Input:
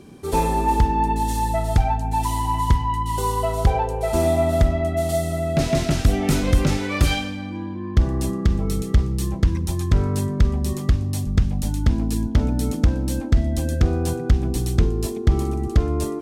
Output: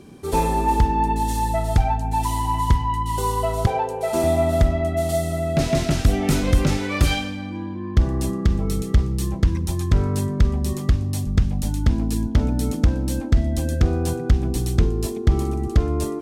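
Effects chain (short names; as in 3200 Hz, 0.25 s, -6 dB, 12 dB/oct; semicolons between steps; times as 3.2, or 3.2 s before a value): 3.66–4.24 HPF 180 Hz 12 dB/oct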